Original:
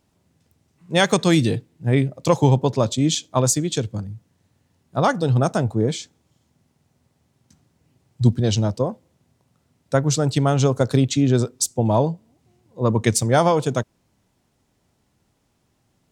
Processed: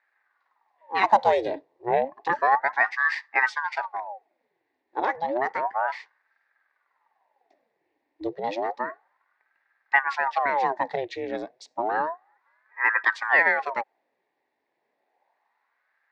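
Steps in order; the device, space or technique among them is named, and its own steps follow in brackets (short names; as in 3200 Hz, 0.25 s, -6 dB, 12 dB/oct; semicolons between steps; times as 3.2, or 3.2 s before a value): voice changer toy (ring modulator with a swept carrier 820 Hz, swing 80%, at 0.31 Hz; speaker cabinet 470–3600 Hz, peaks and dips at 490 Hz -3 dB, 840 Hz +6 dB, 1300 Hz -10 dB, 1900 Hz +10 dB, 3100 Hz -9 dB); 1.03–2.05 graphic EQ 125/500/1000/2000/8000 Hz +6/+4/+10/-7/+6 dB; gain -3 dB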